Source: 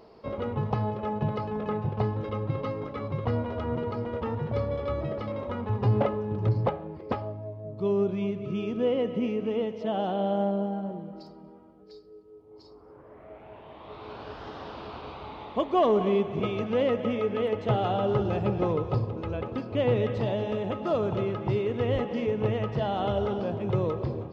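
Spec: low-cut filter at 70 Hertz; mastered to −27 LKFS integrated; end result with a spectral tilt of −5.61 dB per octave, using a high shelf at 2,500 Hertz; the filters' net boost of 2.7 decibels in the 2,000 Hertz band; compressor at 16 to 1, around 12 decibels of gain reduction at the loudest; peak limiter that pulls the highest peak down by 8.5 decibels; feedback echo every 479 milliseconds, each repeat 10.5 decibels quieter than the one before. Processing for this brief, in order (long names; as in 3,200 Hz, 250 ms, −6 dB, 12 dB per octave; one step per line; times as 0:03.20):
high-pass filter 70 Hz
parametric band 2,000 Hz +5 dB
high-shelf EQ 2,500 Hz −3.5 dB
downward compressor 16 to 1, threshold −31 dBFS
brickwall limiter −27.5 dBFS
repeating echo 479 ms, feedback 30%, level −10.5 dB
level +10 dB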